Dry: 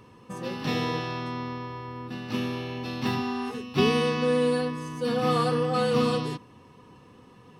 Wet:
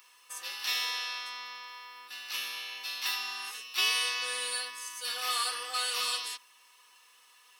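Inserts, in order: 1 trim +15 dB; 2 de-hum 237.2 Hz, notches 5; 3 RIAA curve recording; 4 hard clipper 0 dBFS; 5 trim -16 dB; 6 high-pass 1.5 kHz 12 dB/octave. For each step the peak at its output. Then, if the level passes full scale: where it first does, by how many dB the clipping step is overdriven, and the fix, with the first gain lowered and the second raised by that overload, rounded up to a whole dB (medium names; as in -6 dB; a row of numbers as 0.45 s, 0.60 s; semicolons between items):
+5.0 dBFS, +5.0 dBFS, +4.0 dBFS, 0.0 dBFS, -16.0 dBFS, -15.0 dBFS; step 1, 4.0 dB; step 1 +11 dB, step 5 -12 dB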